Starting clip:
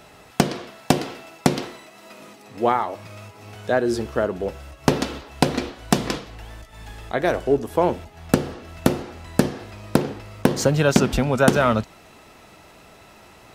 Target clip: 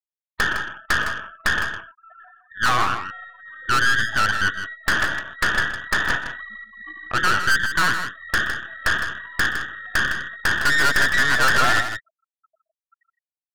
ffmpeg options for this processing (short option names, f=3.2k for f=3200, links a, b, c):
-af "afftfilt=real='real(if(between(b,1,1012),(2*floor((b-1)/92)+1)*92-b,b),0)':imag='imag(if(between(b,1,1012),(2*floor((b-1)/92)+1)*92-b,b),0)*if(between(b,1,1012),-1,1)':win_size=2048:overlap=0.75,lowpass=2.1k,afftfilt=real='re*gte(hypot(re,im),0.0282)':imag='im*gte(hypot(re,im),0.0282)':win_size=1024:overlap=0.75,adynamicequalizer=threshold=0.0251:dfrequency=1400:dqfactor=1.3:tfrequency=1400:tqfactor=1.3:attack=5:release=100:ratio=0.375:range=2.5:mode=boostabove:tftype=bell,aeval=exprs='(tanh(14.1*val(0)+0.75)-tanh(0.75))/14.1':c=same,aecho=1:1:123|159:0.106|0.355,volume=7dB"